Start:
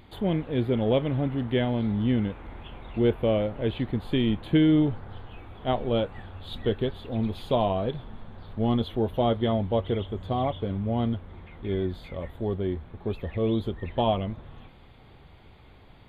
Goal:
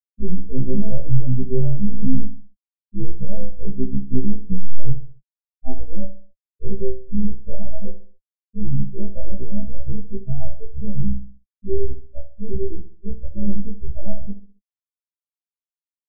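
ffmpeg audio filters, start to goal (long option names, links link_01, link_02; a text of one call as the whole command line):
ffmpeg -i in.wav -filter_complex "[0:a]afftfilt=real='re':imag='-im':win_size=2048:overlap=0.75,aresample=16000,acrusher=bits=3:dc=4:mix=0:aa=0.000001,aresample=44100,aeval=exprs='(tanh(17.8*val(0)+0.15)-tanh(0.15))/17.8':channel_layout=same,asplit=2[link_01][link_02];[link_02]alimiter=level_in=11.5dB:limit=-24dB:level=0:latency=1,volume=-11.5dB,volume=1dB[link_03];[link_01][link_03]amix=inputs=2:normalize=0,afftfilt=real='re*gte(hypot(re,im),0.112)':imag='im*gte(hypot(re,im),0.112)':win_size=1024:overlap=0.75,asuperstop=centerf=1100:order=4:qfactor=0.66,bass=frequency=250:gain=13,treble=frequency=4000:gain=-9,aecho=1:1:5.1:0.87,aecho=1:1:65|130|195|260:0.251|0.103|0.0422|0.0173,acontrast=36,equalizer=frequency=4100:width=2.7:gain=-4,afftfilt=real='re*1.73*eq(mod(b,3),0)':imag='im*1.73*eq(mod(b,3),0)':win_size=2048:overlap=0.75,volume=1.5dB" out.wav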